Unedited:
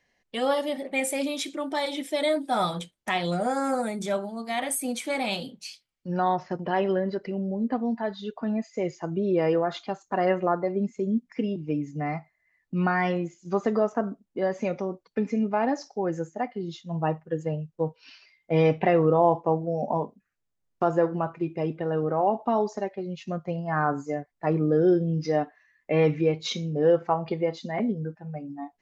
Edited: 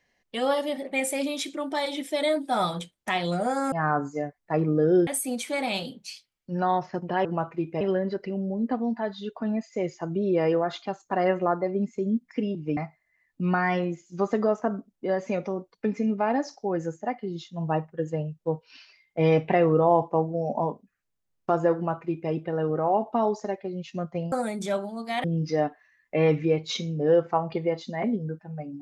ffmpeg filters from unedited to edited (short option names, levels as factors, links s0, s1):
-filter_complex "[0:a]asplit=8[s0][s1][s2][s3][s4][s5][s6][s7];[s0]atrim=end=3.722[s8];[s1]atrim=start=23.648:end=25.002[s9];[s2]atrim=start=4.638:end=6.822[s10];[s3]atrim=start=21.078:end=21.642[s11];[s4]atrim=start=6.818:end=11.782[s12];[s5]atrim=start=12.098:end=23.652[s13];[s6]atrim=start=3.718:end=4.642[s14];[s7]atrim=start=24.998[s15];[s8][s9]acrossfade=d=0.004:c1=hsin:c2=hsin[s16];[s16][s10]acrossfade=d=0.004:c1=hsin:c2=hsin[s17];[s17][s11]acrossfade=d=0.004:c1=hsin:c2=hsin[s18];[s18][s12]acrossfade=d=0.004:c1=hsin:c2=hsin[s19];[s19][s13]acrossfade=d=0.004:c1=hsin:c2=hsin[s20];[s20][s14]acrossfade=d=0.004:c1=hsin:c2=hsin[s21];[s21][s15]acrossfade=d=0.004:c1=hsin:c2=hsin"